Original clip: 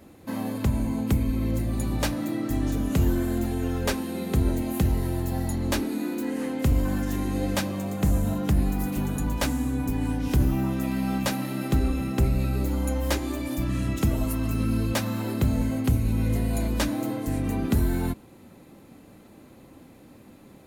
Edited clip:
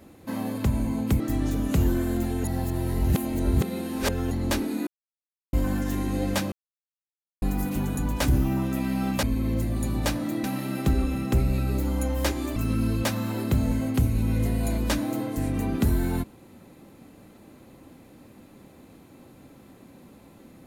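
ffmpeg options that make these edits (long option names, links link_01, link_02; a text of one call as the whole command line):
ffmpeg -i in.wav -filter_complex "[0:a]asplit=12[link_01][link_02][link_03][link_04][link_05][link_06][link_07][link_08][link_09][link_10][link_11][link_12];[link_01]atrim=end=1.202[link_13];[link_02]atrim=start=2.408:end=3.652[link_14];[link_03]atrim=start=3.648:end=5.522,asetpts=PTS-STARTPTS,areverse[link_15];[link_04]atrim=start=5.518:end=6.08,asetpts=PTS-STARTPTS,afade=type=out:start_time=0.558:duration=0.004:curve=hsin[link_16];[link_05]atrim=start=6.08:end=6.74,asetpts=PTS-STARTPTS,volume=0[link_17];[link_06]atrim=start=6.74:end=7.73,asetpts=PTS-STARTPTS,afade=type=in:duration=0.004:curve=hsin,afade=type=out:start_time=0.986:duration=0.004:curve=hsin[link_18];[link_07]atrim=start=7.73:end=8.63,asetpts=PTS-STARTPTS,volume=0[link_19];[link_08]atrim=start=8.63:end=9.492,asetpts=PTS-STARTPTS,afade=type=in:duration=0.004:curve=hsin[link_20];[link_09]atrim=start=10.348:end=11.302[link_21];[link_10]atrim=start=1.198:end=2.412[link_22];[link_11]atrim=start=11.298:end=13.422[link_23];[link_12]atrim=start=14.458[link_24];[link_13][link_14]acrossfade=duration=0.004:curve1=hsin:curve2=hsin[link_25];[link_25][link_15]acrossfade=duration=0.004:curve1=hsin:curve2=hsin[link_26];[link_16][link_17][link_18][link_19][link_20]concat=n=5:v=0:a=1[link_27];[link_26][link_27]acrossfade=duration=0.004:curve1=hsin:curve2=hsin[link_28];[link_28][link_21]acrossfade=duration=0.004:curve1=hsin:curve2=hsin[link_29];[link_29][link_22]acrossfade=duration=0.004:curve1=hsin:curve2=hsin[link_30];[link_30][link_23]acrossfade=duration=0.004:curve1=hsin:curve2=hsin[link_31];[link_31][link_24]acrossfade=duration=0.004:curve1=hsin:curve2=hsin" out.wav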